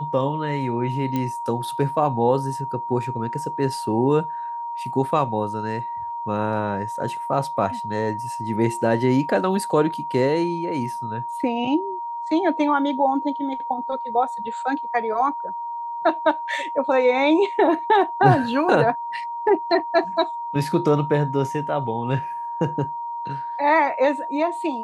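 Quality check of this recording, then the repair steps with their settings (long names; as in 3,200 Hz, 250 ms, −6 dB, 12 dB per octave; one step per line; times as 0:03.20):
whistle 940 Hz −27 dBFS
0:01.16: click −13 dBFS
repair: click removal
notch filter 940 Hz, Q 30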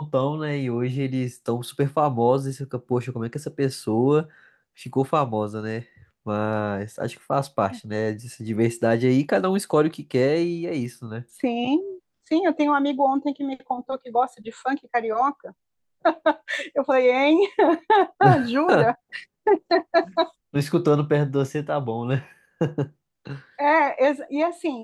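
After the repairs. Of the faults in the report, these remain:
none of them is left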